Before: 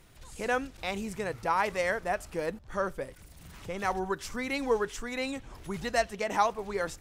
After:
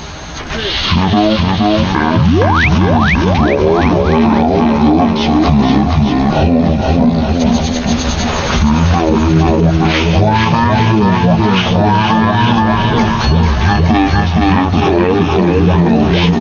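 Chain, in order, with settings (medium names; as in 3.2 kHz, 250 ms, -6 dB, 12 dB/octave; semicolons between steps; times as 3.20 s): high-pass 110 Hz; band-stop 1.2 kHz, Q 18; comb 5.4 ms, depth 46%; compression 12:1, threshold -38 dBFS, peak gain reduction 18 dB; painted sound rise, 0.92–1.15 s, 210–6500 Hz -41 dBFS; bouncing-ball echo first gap 200 ms, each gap 0.85×, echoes 5; speed mistake 78 rpm record played at 33 rpm; loudness maximiser +34.5 dB; trim -1 dB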